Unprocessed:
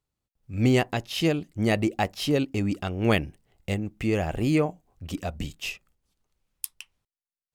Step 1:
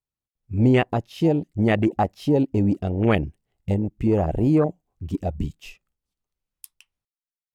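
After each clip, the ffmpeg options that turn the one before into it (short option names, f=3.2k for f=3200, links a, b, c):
-filter_complex "[0:a]afwtdn=0.0398,asplit=2[a][b];[b]alimiter=limit=-19.5dB:level=0:latency=1:release=84,volume=1dB[c];[a][c]amix=inputs=2:normalize=0"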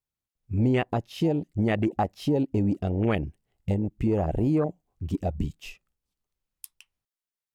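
-af "acompressor=threshold=-24dB:ratio=2"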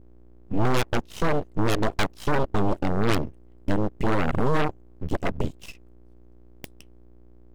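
-af "aeval=exprs='val(0)+0.00447*(sin(2*PI*60*n/s)+sin(2*PI*2*60*n/s)/2+sin(2*PI*3*60*n/s)/3+sin(2*PI*4*60*n/s)/4+sin(2*PI*5*60*n/s)/5)':c=same,aeval=exprs='0.251*(cos(1*acos(clip(val(0)/0.251,-1,1)))-cos(1*PI/2))+0.0631*(cos(3*acos(clip(val(0)/0.251,-1,1)))-cos(3*PI/2))+0.0316*(cos(7*acos(clip(val(0)/0.251,-1,1)))-cos(7*PI/2))+0.0501*(cos(8*acos(clip(val(0)/0.251,-1,1)))-cos(8*PI/2))':c=same,aeval=exprs='abs(val(0))':c=same,volume=3.5dB"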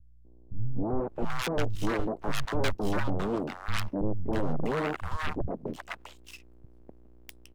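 -filter_complex "[0:a]acrossover=split=150|890[a][b][c];[b]adelay=250[d];[c]adelay=650[e];[a][d][e]amix=inputs=3:normalize=0,volume=-4dB"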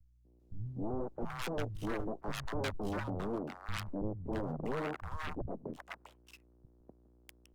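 -filter_complex "[0:a]acrossover=split=190|1100|1600[a][b][c][d];[d]aeval=exprs='sgn(val(0))*max(abs(val(0))-0.00237,0)':c=same[e];[a][b][c][e]amix=inputs=4:normalize=0,volume=-7dB" -ar 48000 -c:a libopus -b:a 48k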